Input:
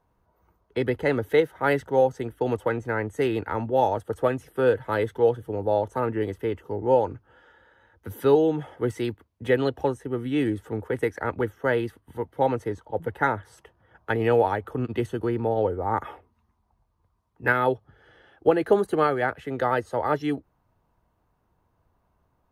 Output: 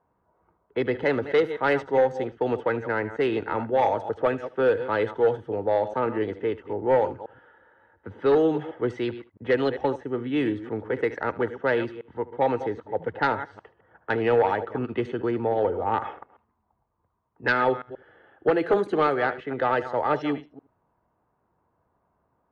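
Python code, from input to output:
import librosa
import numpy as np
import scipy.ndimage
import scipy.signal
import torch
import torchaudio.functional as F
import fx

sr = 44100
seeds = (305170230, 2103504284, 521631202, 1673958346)

p1 = fx.reverse_delay(x, sr, ms=132, wet_db=-13.5)
p2 = fx.highpass(p1, sr, hz=220.0, slope=6)
p3 = fx.env_lowpass(p2, sr, base_hz=1600.0, full_db=-17.5)
p4 = fx.fold_sine(p3, sr, drive_db=5, ceiling_db=-7.0)
p5 = scipy.signal.sosfilt(scipy.signal.butter(2, 5200.0, 'lowpass', fs=sr, output='sos'), p4)
p6 = p5 + fx.echo_single(p5, sr, ms=76, db=-19.0, dry=0)
y = p6 * 10.0 ** (-7.0 / 20.0)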